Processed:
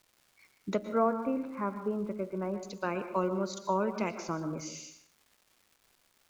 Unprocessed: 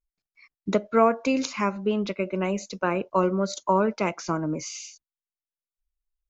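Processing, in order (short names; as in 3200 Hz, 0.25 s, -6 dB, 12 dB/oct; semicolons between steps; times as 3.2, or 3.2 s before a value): 0.89–2.63 LPF 1600 Hz 24 dB/oct; crackle 520/s -45 dBFS; reverb RT60 0.65 s, pre-delay 0.107 s, DRR 9.5 dB; gain -8 dB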